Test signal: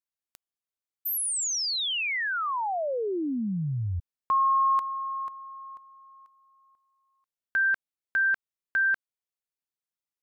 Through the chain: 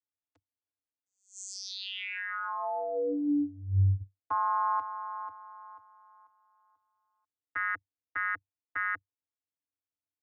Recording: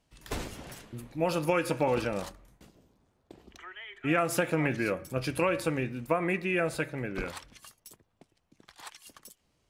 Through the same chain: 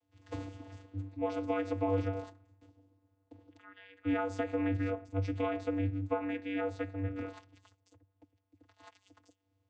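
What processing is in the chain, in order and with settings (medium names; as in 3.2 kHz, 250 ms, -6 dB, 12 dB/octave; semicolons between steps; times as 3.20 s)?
vocoder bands 16, square 96.8 Hz; trim -3.5 dB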